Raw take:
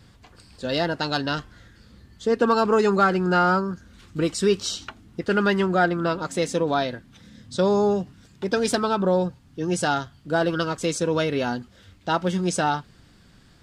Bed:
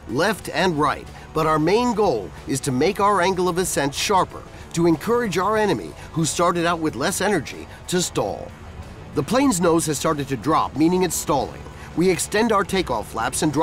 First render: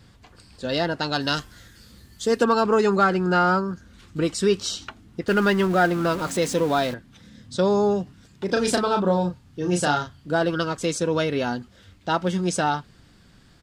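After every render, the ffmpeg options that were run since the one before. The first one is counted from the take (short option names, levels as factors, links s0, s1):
-filter_complex "[0:a]asplit=3[s0][s1][s2];[s0]afade=t=out:st=1.2:d=0.02[s3];[s1]aemphasis=mode=production:type=75kf,afade=t=in:st=1.2:d=0.02,afade=t=out:st=2.43:d=0.02[s4];[s2]afade=t=in:st=2.43:d=0.02[s5];[s3][s4][s5]amix=inputs=3:normalize=0,asettb=1/sr,asplit=3[s6][s7][s8];[s6]atrim=end=5.284[s9];[s7]atrim=start=5.28:end=6.94,asetpts=PTS-STARTPTS,afade=t=in:d=0.004:c=qsin,afade=t=out:st=1.656:d=0.004:c=qsin,aeval=exprs='val(0)+0.5*0.0282*sgn(val(0))':c=same[s10];[s8]atrim=start=6.936[s11];[s9][s10]acrossfade=d=0.004:c1=hsin:c2=qsin[s12];[s12][s11]acrossfade=d=0.004:c1=qsin:c2=hsin,asplit=3[s13][s14][s15];[s13]afade=t=out:st=8.48:d=0.02[s16];[s14]asplit=2[s17][s18];[s18]adelay=34,volume=0.562[s19];[s17][s19]amix=inputs=2:normalize=0,afade=t=in:st=8.48:d=0.02,afade=t=out:st=10.32:d=0.02[s20];[s15]afade=t=in:st=10.32:d=0.02[s21];[s16][s20][s21]amix=inputs=3:normalize=0"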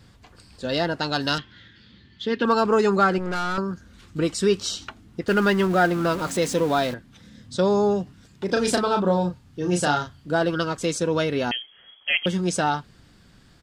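-filter_complex "[0:a]asettb=1/sr,asplit=3[s0][s1][s2];[s0]atrim=end=1.384[s3];[s1]atrim=start=1.38:end=2.45,asetpts=PTS-STARTPTS,afade=t=in:d=0.004:c=qsin,afade=t=out:st=1.066:d=0.004:c=qsin,highpass=100,equalizer=f=490:t=q:w=4:g=-6,equalizer=f=700:t=q:w=4:g=-10,equalizer=f=1200:t=q:w=4:g=-6,equalizer=f=1900:t=q:w=4:g=3,equalizer=f=3300:t=q:w=4:g=7,lowpass=f=3900:w=0.5412,lowpass=f=3900:w=1.3066[s4];[s2]atrim=start=2.446[s5];[s3][s4]acrossfade=d=0.004:c1=hsin:c2=qsin[s6];[s6][s5]acrossfade=d=0.004:c1=qsin:c2=hsin,asettb=1/sr,asplit=3[s7][s8][s9];[s7]atrim=end=3.184[s10];[s8]atrim=start=3.18:end=3.58,asetpts=PTS-STARTPTS,afade=t=in:d=0.004:c=qsin,afade=t=out:st=0.396:d=0.004:c=qsin,aeval=exprs='(tanh(15.8*val(0)+0.75)-tanh(0.75))/15.8':c=same[s11];[s9]atrim=start=3.576[s12];[s10][s11]acrossfade=d=0.004:c1=hsin:c2=qsin[s13];[s13][s12]acrossfade=d=0.004:c1=qsin:c2=hsin,asettb=1/sr,asplit=3[s14][s15][s16];[s14]atrim=end=11.514[s17];[s15]atrim=start=11.51:end=12.26,asetpts=PTS-STARTPTS,afade=t=in:d=0.004:c=qsin,afade=t=out:st=0.746:d=0.004:c=qsin,lowpass=f=2900:t=q:w=0.5098,lowpass=f=2900:t=q:w=0.6013,lowpass=f=2900:t=q:w=0.9,lowpass=f=2900:t=q:w=2.563,afreqshift=-3400[s18];[s16]atrim=start=12.256[s19];[s17][s18]acrossfade=d=0.004:c1=hsin:c2=qsin[s20];[s20][s19]acrossfade=d=0.004:c1=qsin:c2=hsin"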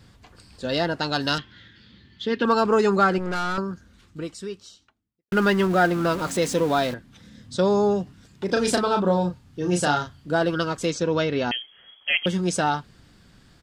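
-filter_complex "[0:a]asettb=1/sr,asplit=3[s0][s1][s2];[s0]atrim=end=10.904[s3];[s1]atrim=start=10.9:end=11.51,asetpts=PTS-STARTPTS,afade=t=in:d=0.004:c=qsin,afade=t=out:st=0.606:d=0.004:c=qsin,lowpass=f=6400:w=0.5412,lowpass=f=6400:w=1.3066[s4];[s2]atrim=start=11.506[s5];[s3][s4]acrossfade=d=0.004:c1=hsin:c2=qsin[s6];[s6][s5]acrossfade=d=0.004:c1=qsin:c2=hsin,asplit=2[s7][s8];[s7]atrim=end=5.32,asetpts=PTS-STARTPTS,afade=t=out:st=3.5:d=1.82:c=qua[s9];[s8]atrim=start=5.32,asetpts=PTS-STARTPTS,afade=t=in:d=0.004:c=hsin[s10];[s9][s10]concat=n=2:v=0:a=1"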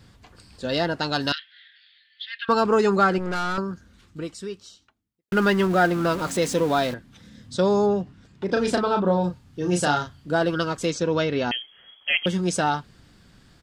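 -filter_complex "[0:a]asettb=1/sr,asplit=3[s0][s1][s2];[s0]atrim=end=1.324[s3];[s1]atrim=start=1.32:end=2.49,asetpts=PTS-STARTPTS,afade=t=in:d=0.004:c=qsin,afade=t=out:st=1.166:d=0.004:c=qsin,asuperpass=centerf=2700:order=8:qfactor=0.95[s4];[s2]atrim=start=2.486[s5];[s3][s4]acrossfade=d=0.004:c1=hsin:c2=qsin[s6];[s6][s5]acrossfade=d=0.004:c1=qsin:c2=hsin,asettb=1/sr,asplit=3[s7][s8][s9];[s7]atrim=end=7.864[s10];[s8]atrim=start=7.86:end=9.24,asetpts=PTS-STARTPTS,afade=t=in:d=0.004:c=qsin,afade=t=out:st=1.376:d=0.004:c=qsin,aemphasis=mode=reproduction:type=50kf[s11];[s9]atrim=start=9.236[s12];[s10][s11]acrossfade=d=0.004:c1=hsin:c2=qsin[s13];[s13][s12]acrossfade=d=0.004:c1=qsin:c2=hsin"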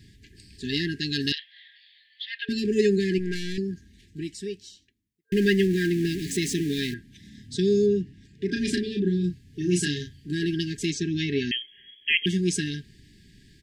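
-af "afftfilt=real='re*(1-between(b*sr/4096,440,1600))':imag='im*(1-between(b*sr/4096,440,1600))':win_size=4096:overlap=0.75"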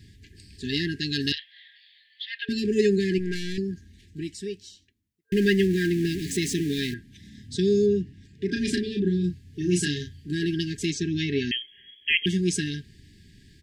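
-af "equalizer=f=85:w=3.4:g=7"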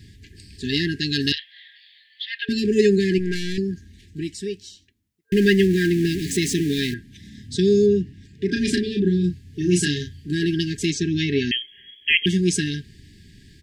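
-af "volume=1.68"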